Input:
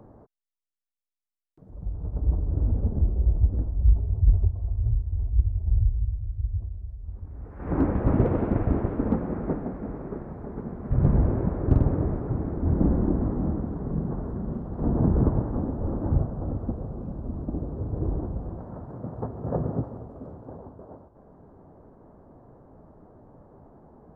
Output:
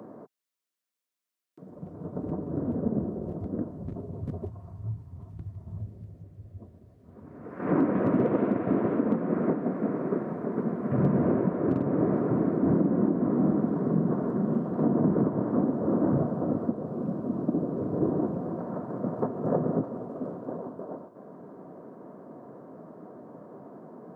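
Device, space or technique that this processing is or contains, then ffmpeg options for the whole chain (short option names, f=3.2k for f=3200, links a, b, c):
PA system with an anti-feedback notch: -filter_complex "[0:a]highpass=f=170:w=0.5412,highpass=f=170:w=1.3066,asuperstop=centerf=830:order=4:qfactor=7.4,alimiter=limit=-22dB:level=0:latency=1:release=357,asettb=1/sr,asplit=3[a][b][c];[a]atrim=end=4.504[d];[b]atrim=start=4.5:end=5.8,asetpts=PTS-STARTPTS,afade=t=in:d=0.004:c=qsin,afade=t=out:st=1.296:d=0.004:c=qsin,equalizer=f=125:t=o:w=1:g=5,equalizer=f=250:t=o:w=1:g=-7,equalizer=f=500:t=o:w=1:g=-11,equalizer=f=1k:t=o:w=1:g=4[e];[c]atrim=start=5.796[f];[d][e]acrossfade=d=0.004:c1=hsin:c2=qsin[g];[g][f]acrossfade=d=0.004:c1=qsin:c2=hsin,volume=7.5dB"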